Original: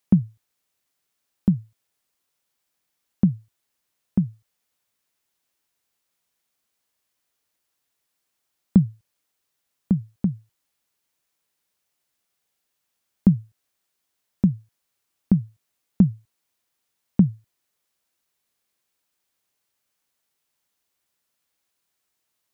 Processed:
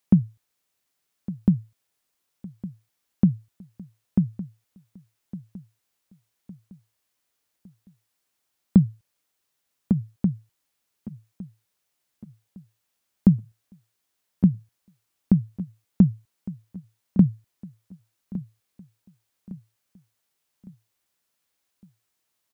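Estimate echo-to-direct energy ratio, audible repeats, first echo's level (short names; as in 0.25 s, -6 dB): -15.0 dB, 3, -16.0 dB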